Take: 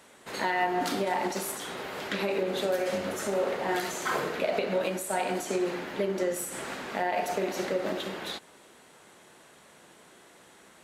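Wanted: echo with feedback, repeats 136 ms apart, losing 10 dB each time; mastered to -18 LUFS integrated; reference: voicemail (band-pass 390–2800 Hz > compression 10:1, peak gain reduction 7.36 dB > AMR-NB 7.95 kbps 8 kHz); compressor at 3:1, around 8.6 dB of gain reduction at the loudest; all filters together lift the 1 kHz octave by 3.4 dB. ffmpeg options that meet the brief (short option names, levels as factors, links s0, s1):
-af "equalizer=f=1000:t=o:g=5,acompressor=threshold=0.0224:ratio=3,highpass=390,lowpass=2800,aecho=1:1:136|272|408|544:0.316|0.101|0.0324|0.0104,acompressor=threshold=0.0158:ratio=10,volume=15.8" -ar 8000 -c:a libopencore_amrnb -b:a 7950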